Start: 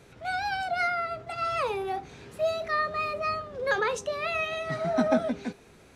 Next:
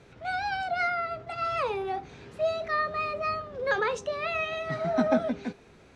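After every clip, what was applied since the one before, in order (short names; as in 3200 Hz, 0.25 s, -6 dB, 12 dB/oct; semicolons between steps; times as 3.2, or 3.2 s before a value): air absorption 68 m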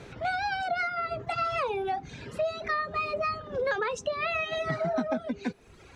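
reverb removal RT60 1 s; compressor 6:1, threshold -36 dBFS, peak gain reduction 15.5 dB; gain +9 dB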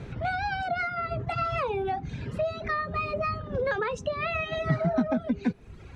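tone controls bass +11 dB, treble -6 dB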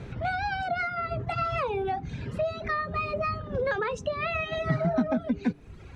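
de-hum 146.6 Hz, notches 3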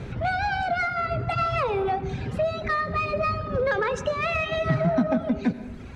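in parallel at -5 dB: soft clip -27.5 dBFS, distortion -11 dB; on the sum: reverb RT60 1.3 s, pre-delay 78 ms, DRR 12.5 dB; gain +1 dB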